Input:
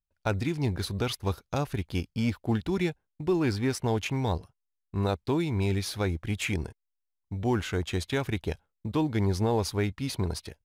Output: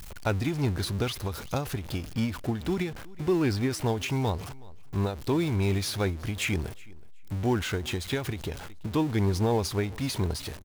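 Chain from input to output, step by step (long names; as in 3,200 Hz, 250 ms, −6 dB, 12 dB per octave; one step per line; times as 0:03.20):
converter with a step at zero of −34.5 dBFS
repeating echo 371 ms, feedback 17%, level −23.5 dB
every ending faded ahead of time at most 110 dB per second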